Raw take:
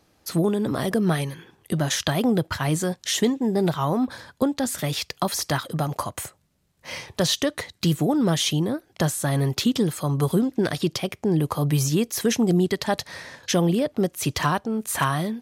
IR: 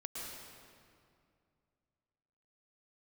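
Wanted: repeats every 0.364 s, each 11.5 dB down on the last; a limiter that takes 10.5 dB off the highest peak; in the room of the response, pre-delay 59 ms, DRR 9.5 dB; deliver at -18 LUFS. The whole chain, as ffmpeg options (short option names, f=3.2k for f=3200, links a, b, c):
-filter_complex "[0:a]alimiter=limit=-18.5dB:level=0:latency=1,aecho=1:1:364|728|1092:0.266|0.0718|0.0194,asplit=2[a][b];[1:a]atrim=start_sample=2205,adelay=59[c];[b][c]afir=irnorm=-1:irlink=0,volume=-9dB[d];[a][d]amix=inputs=2:normalize=0,volume=9dB"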